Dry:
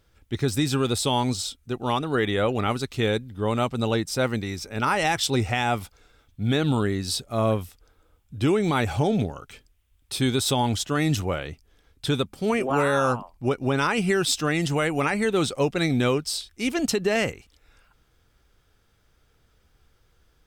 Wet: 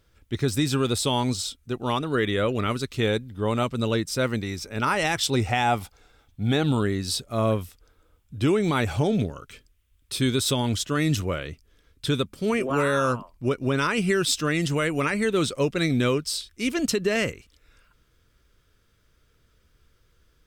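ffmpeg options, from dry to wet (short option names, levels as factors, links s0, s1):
-af "asetnsamples=n=441:p=0,asendcmd='2.09 equalizer g -14.5;2.98 equalizer g -3;3.63 equalizer g -13;4.28 equalizer g -5;5.47 equalizer g 5.5;6.66 equalizer g -6;9.1 equalizer g -14.5',equalizer=f=790:t=o:w=0.26:g=-5.5"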